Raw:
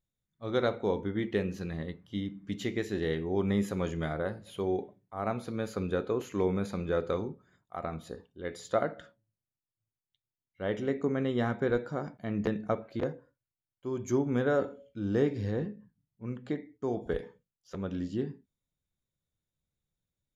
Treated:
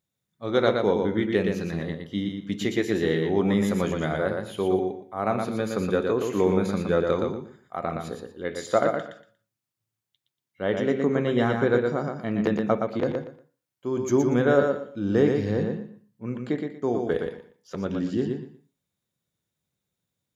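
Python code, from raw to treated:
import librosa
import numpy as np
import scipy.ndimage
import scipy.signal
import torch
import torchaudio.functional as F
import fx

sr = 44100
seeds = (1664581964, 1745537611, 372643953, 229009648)

p1 = scipy.signal.sosfilt(scipy.signal.butter(2, 120.0, 'highpass', fs=sr, output='sos'), x)
p2 = p1 + fx.echo_feedback(p1, sr, ms=118, feedback_pct=22, wet_db=-4.5, dry=0)
y = F.gain(torch.from_numpy(p2), 6.5).numpy()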